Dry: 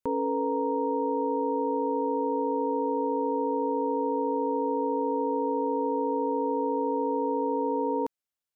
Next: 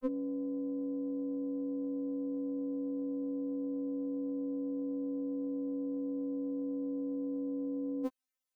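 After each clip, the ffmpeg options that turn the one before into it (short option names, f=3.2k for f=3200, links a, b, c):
-af "afftfilt=real='re*3.46*eq(mod(b,12),0)':imag='im*3.46*eq(mod(b,12),0)':win_size=2048:overlap=0.75,volume=1.5dB"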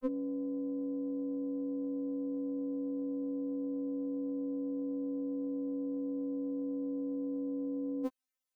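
-af anull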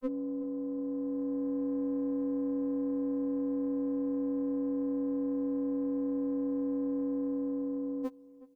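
-filter_complex "[0:a]dynaudnorm=f=260:g=9:m=4.5dB,asplit=2[a][b];[b]asoftclip=type=tanh:threshold=-32.5dB,volume=-6dB[c];[a][c]amix=inputs=2:normalize=0,asplit=2[d][e];[e]adelay=370,lowpass=f=1k:p=1,volume=-17.5dB,asplit=2[f][g];[g]adelay=370,lowpass=f=1k:p=1,volume=0.39,asplit=2[h][i];[i]adelay=370,lowpass=f=1k:p=1,volume=0.39[j];[d][f][h][j]amix=inputs=4:normalize=0,volume=-2dB"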